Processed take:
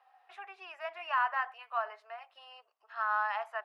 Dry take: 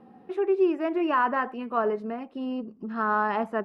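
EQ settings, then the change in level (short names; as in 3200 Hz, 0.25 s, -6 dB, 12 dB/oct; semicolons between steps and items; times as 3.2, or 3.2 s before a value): elliptic high-pass 680 Hz, stop band 70 dB; tilt shelf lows -7.5 dB, about 1400 Hz; high shelf 3600 Hz -9 dB; -2.5 dB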